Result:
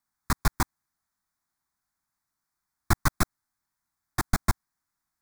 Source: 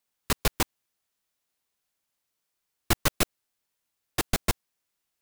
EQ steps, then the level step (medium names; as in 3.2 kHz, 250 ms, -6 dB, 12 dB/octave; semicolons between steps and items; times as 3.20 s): treble shelf 5.7 kHz -9 dB; static phaser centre 1.2 kHz, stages 4; +4.5 dB